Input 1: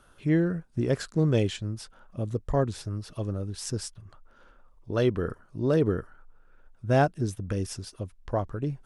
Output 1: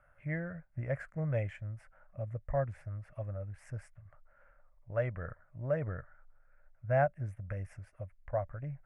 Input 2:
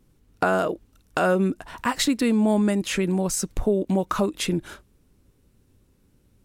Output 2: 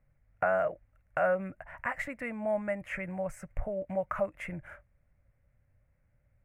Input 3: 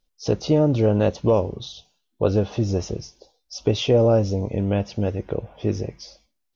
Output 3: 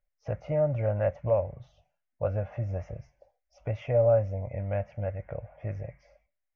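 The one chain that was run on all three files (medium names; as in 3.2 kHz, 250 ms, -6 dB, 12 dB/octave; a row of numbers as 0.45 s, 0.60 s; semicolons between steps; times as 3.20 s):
FFT filter 140 Hz 0 dB, 210 Hz -12 dB, 410 Hz -18 dB, 580 Hz +6 dB, 980 Hz -5 dB, 2.1 kHz +6 dB, 3.8 kHz -30 dB, 8.6 kHz -18 dB; trim -7 dB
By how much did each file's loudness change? -9.0 LU, -10.0 LU, -7.5 LU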